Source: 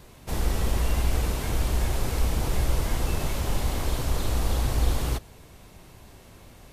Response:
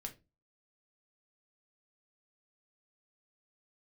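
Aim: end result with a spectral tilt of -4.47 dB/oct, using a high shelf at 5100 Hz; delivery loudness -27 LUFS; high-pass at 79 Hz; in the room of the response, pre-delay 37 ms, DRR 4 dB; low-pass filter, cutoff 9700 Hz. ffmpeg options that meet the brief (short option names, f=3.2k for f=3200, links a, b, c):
-filter_complex "[0:a]highpass=79,lowpass=9.7k,highshelf=f=5.1k:g=7,asplit=2[a][b];[1:a]atrim=start_sample=2205,adelay=37[c];[b][c]afir=irnorm=-1:irlink=0,volume=-0.5dB[d];[a][d]amix=inputs=2:normalize=0,volume=1dB"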